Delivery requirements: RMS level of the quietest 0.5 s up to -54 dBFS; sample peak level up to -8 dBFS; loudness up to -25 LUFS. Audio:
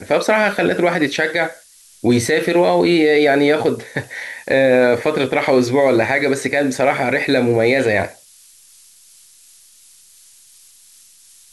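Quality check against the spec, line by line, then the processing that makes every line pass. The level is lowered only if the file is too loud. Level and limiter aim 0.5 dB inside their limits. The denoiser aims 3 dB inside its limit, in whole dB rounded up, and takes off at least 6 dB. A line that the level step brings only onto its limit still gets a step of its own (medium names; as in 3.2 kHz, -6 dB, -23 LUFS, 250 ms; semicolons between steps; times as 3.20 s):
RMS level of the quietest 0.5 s -48 dBFS: fail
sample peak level -4.5 dBFS: fail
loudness -16.0 LUFS: fail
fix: trim -9.5 dB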